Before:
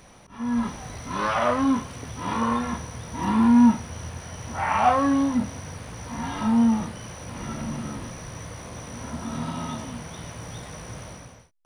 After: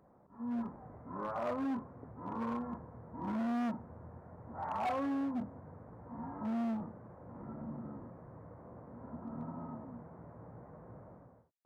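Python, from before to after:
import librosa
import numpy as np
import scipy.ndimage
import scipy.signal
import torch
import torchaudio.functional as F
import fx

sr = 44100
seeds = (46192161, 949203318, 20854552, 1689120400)

y = scipy.ndimage.gaussian_filter1d(x, 7.9, mode='constant')
y = np.clip(y, -10.0 ** (-22.0 / 20.0), 10.0 ** (-22.0 / 20.0))
y = fx.highpass(y, sr, hz=200.0, slope=6)
y = y * 10.0 ** (-8.5 / 20.0)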